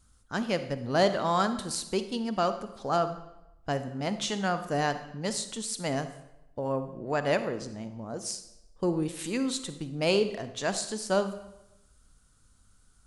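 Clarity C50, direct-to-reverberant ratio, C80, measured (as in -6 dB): 11.0 dB, 10.0 dB, 13.5 dB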